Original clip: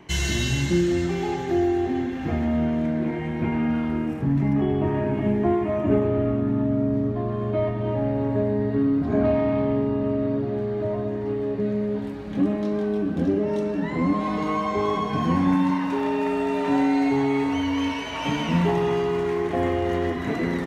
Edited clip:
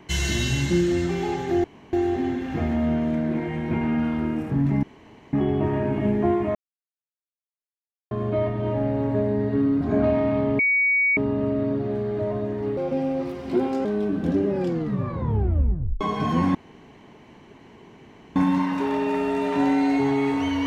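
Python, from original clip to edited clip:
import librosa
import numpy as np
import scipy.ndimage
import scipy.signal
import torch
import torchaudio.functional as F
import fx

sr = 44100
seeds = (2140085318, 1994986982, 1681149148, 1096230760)

y = fx.edit(x, sr, fx.insert_room_tone(at_s=1.64, length_s=0.29),
    fx.insert_room_tone(at_s=4.54, length_s=0.5),
    fx.silence(start_s=5.76, length_s=1.56),
    fx.insert_tone(at_s=9.8, length_s=0.58, hz=2250.0, db=-17.0),
    fx.speed_span(start_s=11.4, length_s=1.38, speed=1.28),
    fx.tape_stop(start_s=13.37, length_s=1.57),
    fx.insert_room_tone(at_s=15.48, length_s=1.81), tone=tone)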